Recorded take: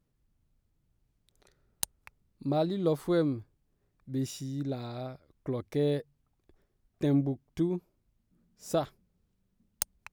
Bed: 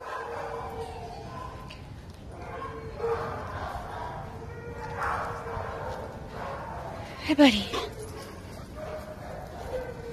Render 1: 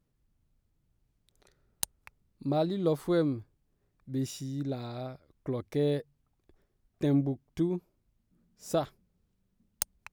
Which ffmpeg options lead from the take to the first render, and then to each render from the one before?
-af anull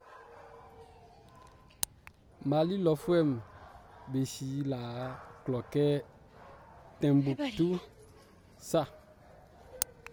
-filter_complex "[1:a]volume=-17dB[a];[0:a][a]amix=inputs=2:normalize=0"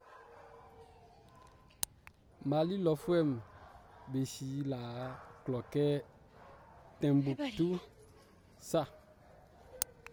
-af "volume=-3.5dB"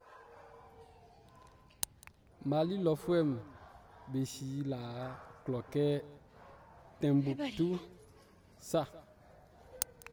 -af "aecho=1:1:198:0.0708"

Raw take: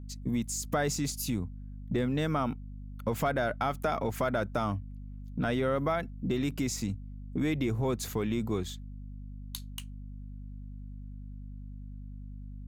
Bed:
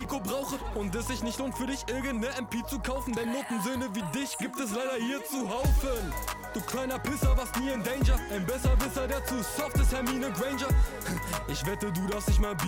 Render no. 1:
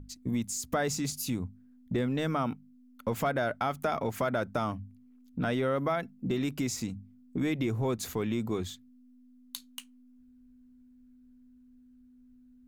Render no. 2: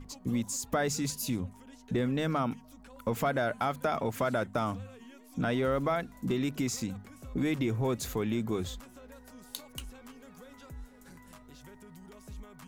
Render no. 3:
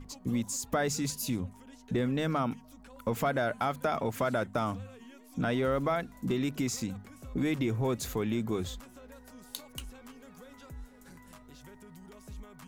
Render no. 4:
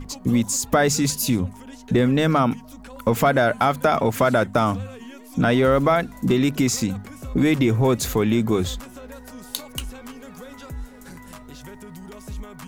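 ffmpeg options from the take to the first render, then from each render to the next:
-af "bandreject=f=50:t=h:w=6,bandreject=f=100:t=h:w=6,bandreject=f=150:t=h:w=6,bandreject=f=200:t=h:w=6"
-filter_complex "[1:a]volume=-21dB[a];[0:a][a]amix=inputs=2:normalize=0"
-af anull
-af "volume=11.5dB"

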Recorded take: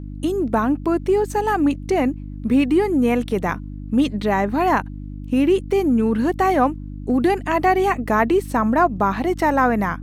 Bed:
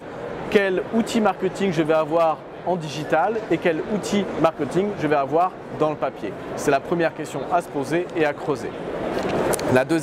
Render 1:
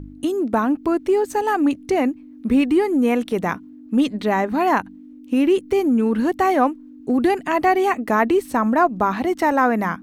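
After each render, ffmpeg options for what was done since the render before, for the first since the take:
-af "bandreject=f=50:t=h:w=4,bandreject=f=100:t=h:w=4,bandreject=f=150:t=h:w=4,bandreject=f=200:t=h:w=4"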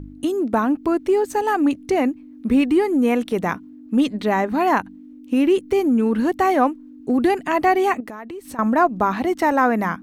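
-filter_complex "[0:a]asettb=1/sr,asplit=3[a][b][c];[a]atrim=end=8.004[d];[b]atrim=start=8:end=8.59,asetpts=PTS-STARTPTS,afade=t=in:d=0.004:c=qsin,afade=t=out:st=0.586:d=0.004:c=qsin,acompressor=threshold=-31dB:ratio=8:attack=3.2:release=140:knee=1:detection=peak[e];[c]atrim=start=8.586[f];[d][e]acrossfade=d=0.004:c1=hsin:c2=qsin[g];[g][f]acrossfade=d=0.004:c1=qsin:c2=hsin"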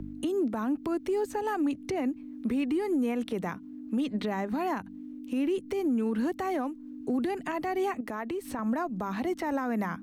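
-filter_complex "[0:a]acrossover=split=130|260|3700[a][b][c][d];[a]acompressor=threshold=-44dB:ratio=4[e];[b]acompressor=threshold=-24dB:ratio=4[f];[c]acompressor=threshold=-24dB:ratio=4[g];[d]acompressor=threshold=-47dB:ratio=4[h];[e][f][g][h]amix=inputs=4:normalize=0,alimiter=limit=-22dB:level=0:latency=1:release=266"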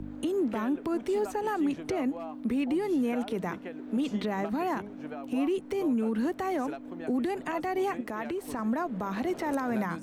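-filter_complex "[1:a]volume=-22dB[a];[0:a][a]amix=inputs=2:normalize=0"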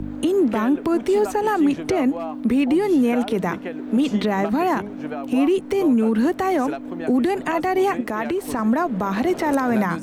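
-af "volume=10dB"

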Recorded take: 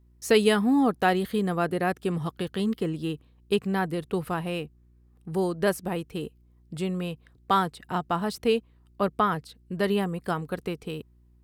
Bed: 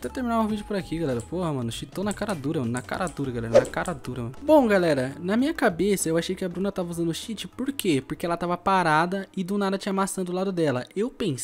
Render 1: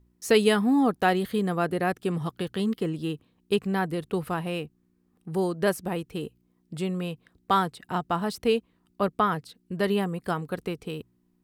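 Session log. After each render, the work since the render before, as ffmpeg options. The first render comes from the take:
-af "bandreject=f=60:t=h:w=4,bandreject=f=120:t=h:w=4"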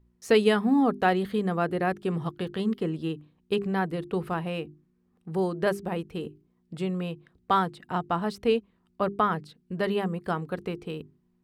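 -af "lowpass=f=3.3k:p=1,bandreject=f=50:t=h:w=6,bandreject=f=100:t=h:w=6,bandreject=f=150:t=h:w=6,bandreject=f=200:t=h:w=6,bandreject=f=250:t=h:w=6,bandreject=f=300:t=h:w=6,bandreject=f=350:t=h:w=6,bandreject=f=400:t=h:w=6"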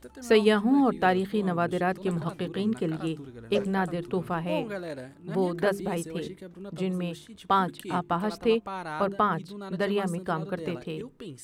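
-filter_complex "[1:a]volume=-14.5dB[a];[0:a][a]amix=inputs=2:normalize=0"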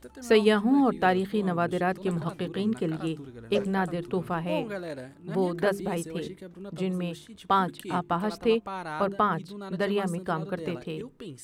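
-af anull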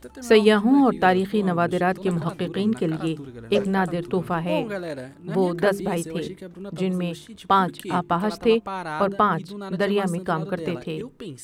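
-af "volume=5dB"

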